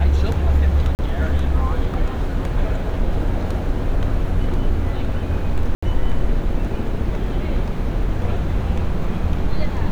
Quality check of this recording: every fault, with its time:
0.95–0.99 gap 39 ms
5.75–5.83 gap 75 ms

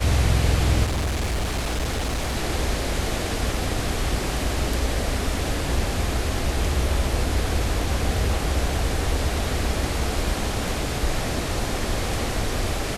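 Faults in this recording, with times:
0.84–2.37 clipped -21 dBFS

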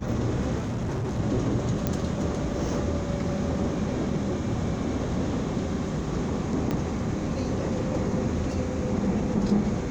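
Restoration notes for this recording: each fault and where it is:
0.57–1.2 clipped -26 dBFS
1.87 pop -12 dBFS
6.71 pop -15 dBFS

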